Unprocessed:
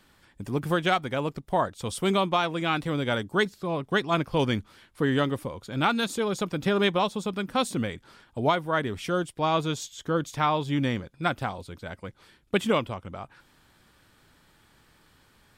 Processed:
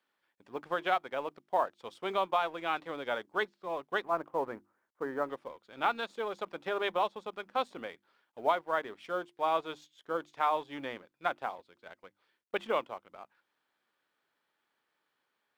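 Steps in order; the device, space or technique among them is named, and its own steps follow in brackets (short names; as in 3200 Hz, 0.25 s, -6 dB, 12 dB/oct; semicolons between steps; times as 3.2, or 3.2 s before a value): notches 50/100/150/200/250/300/350 Hz; 4.04–5.29 LPF 1500 Hz 24 dB/oct; dynamic EQ 780 Hz, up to +6 dB, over -37 dBFS, Q 0.73; phone line with mismatched companding (BPF 400–3600 Hz; G.711 law mismatch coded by A); gain -8.5 dB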